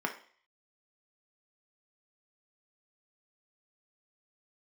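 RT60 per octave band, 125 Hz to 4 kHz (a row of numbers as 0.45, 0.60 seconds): 0.40, 0.40, 0.45, 0.50, 0.55, 0.55 seconds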